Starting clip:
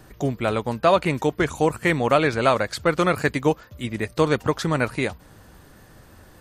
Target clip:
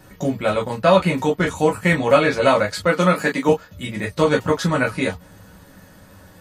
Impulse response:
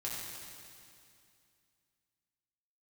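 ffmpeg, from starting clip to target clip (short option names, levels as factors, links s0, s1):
-filter_complex "[0:a]asettb=1/sr,asplit=3[s0][s1][s2];[s0]atrim=end=2.854[s3];[s1]atrim=start=2.85:end=3.49,asetpts=PTS-STARTPTS,afade=t=in:d=0.004:c=qsin,afade=t=out:st=0.636:d=0.004:c=qsin,highpass=f=170:w=0.5412,highpass=f=170:w=1.3066[s4];[s2]atrim=start=3.486[s5];[s3][s4]acrossfade=d=0.004:c1=hsin:c2=qsin[s6];[s6][s5]acrossfade=d=0.004:c1=qsin:c2=hsin[s7];[1:a]atrim=start_sample=2205,atrim=end_sample=3087,asetrate=70560,aresample=44100[s8];[s7][s8]afir=irnorm=-1:irlink=0,volume=2.51"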